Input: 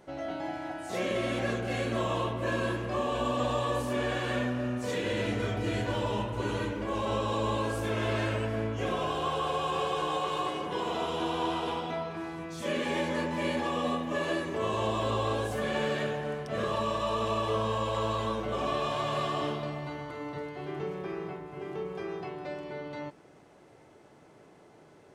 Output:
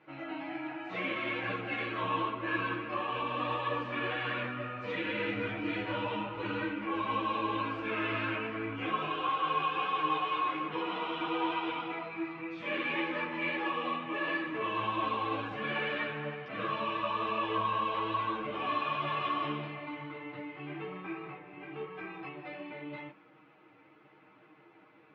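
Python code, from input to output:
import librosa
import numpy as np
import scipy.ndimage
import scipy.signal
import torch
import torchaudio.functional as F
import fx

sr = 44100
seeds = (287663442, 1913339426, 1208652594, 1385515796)

y = fx.cabinet(x, sr, low_hz=140.0, low_slope=12, high_hz=3200.0, hz=(170.0, 430.0, 670.0, 1300.0, 2400.0), db=(-8, -7, -8, 6, 7))
y = y + 0.77 * np.pad(y, (int(6.4 * sr / 1000.0), 0))[:len(y)]
y = fx.ensemble(y, sr)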